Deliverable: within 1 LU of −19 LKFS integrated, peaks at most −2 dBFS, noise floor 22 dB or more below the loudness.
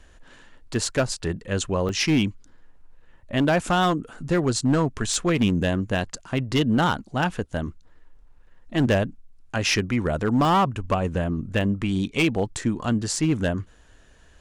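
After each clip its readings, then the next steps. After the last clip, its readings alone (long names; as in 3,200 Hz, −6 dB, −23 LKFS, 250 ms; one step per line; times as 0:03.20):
share of clipped samples 1.2%; peaks flattened at −14.5 dBFS; number of dropouts 4; longest dropout 1.1 ms; integrated loudness −24.0 LKFS; sample peak −14.5 dBFS; target loudness −19.0 LKFS
→ clipped peaks rebuilt −14.5 dBFS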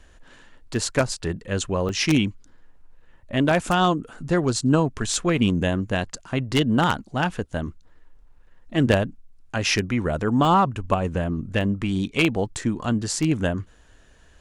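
share of clipped samples 0.0%; number of dropouts 4; longest dropout 1.1 ms
→ repair the gap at 0:00.74/0:01.89/0:10.45/0:11.61, 1.1 ms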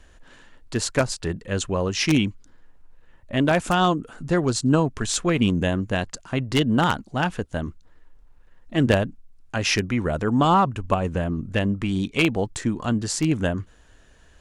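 number of dropouts 0; integrated loudness −23.5 LKFS; sample peak −5.5 dBFS; target loudness −19.0 LKFS
→ level +4.5 dB
brickwall limiter −2 dBFS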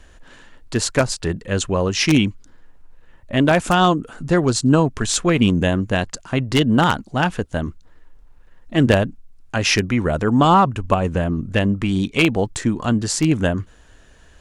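integrated loudness −19.0 LKFS; sample peak −2.0 dBFS; background noise floor −49 dBFS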